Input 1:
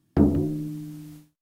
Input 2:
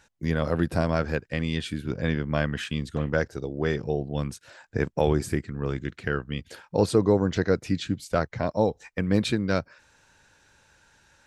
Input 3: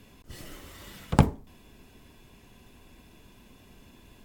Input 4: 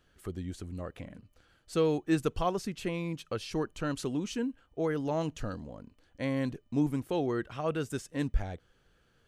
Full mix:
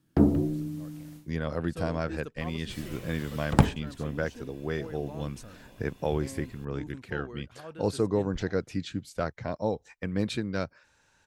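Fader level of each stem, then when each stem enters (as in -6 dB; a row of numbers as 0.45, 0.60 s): -2.0, -6.0, -0.5, -12.5 dB; 0.00, 1.05, 2.40, 0.00 s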